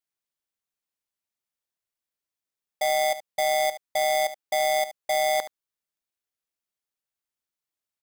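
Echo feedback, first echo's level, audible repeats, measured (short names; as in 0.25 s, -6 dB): no steady repeat, -13.5 dB, 1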